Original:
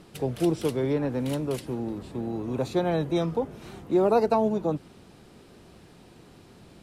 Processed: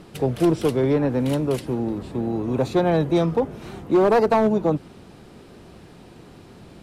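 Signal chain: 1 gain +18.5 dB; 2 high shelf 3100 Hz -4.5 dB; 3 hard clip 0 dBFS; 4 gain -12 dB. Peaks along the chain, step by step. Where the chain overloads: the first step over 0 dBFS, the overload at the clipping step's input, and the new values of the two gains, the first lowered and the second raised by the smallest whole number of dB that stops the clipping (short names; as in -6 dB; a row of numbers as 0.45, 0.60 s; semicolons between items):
+8.0, +8.0, 0.0, -12.0 dBFS; step 1, 8.0 dB; step 1 +10.5 dB, step 4 -4 dB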